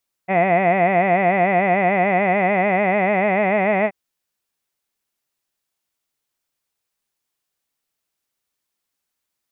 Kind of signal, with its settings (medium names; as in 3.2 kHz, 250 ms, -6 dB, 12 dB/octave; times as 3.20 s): formant vowel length 3.63 s, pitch 180 Hz, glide +2 st, vibrato 6.8 Hz, vibrato depth 1.25 st, F1 690 Hz, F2 2 kHz, F3 2.5 kHz